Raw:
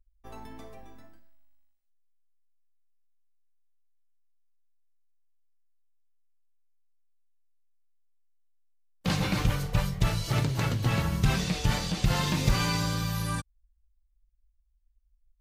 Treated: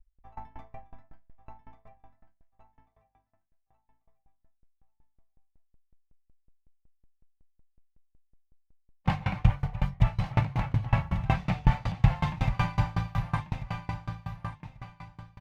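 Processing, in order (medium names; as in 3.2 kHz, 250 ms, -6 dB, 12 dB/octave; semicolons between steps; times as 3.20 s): tracing distortion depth 0.047 ms; FFT filter 130 Hz 0 dB, 410 Hz -16 dB, 800 Hz +4 dB, 1.4 kHz -6 dB, 2.2 kHz -3 dB, 4.2 kHz -17 dB, 10 kHz -25 dB; feedback delay 1140 ms, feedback 31%, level -7 dB; sawtooth tremolo in dB decaying 5.4 Hz, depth 26 dB; trim +8 dB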